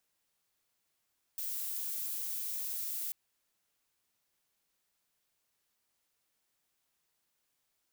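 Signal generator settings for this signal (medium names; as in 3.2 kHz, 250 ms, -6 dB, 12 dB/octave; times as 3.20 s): noise violet, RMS -37.5 dBFS 1.74 s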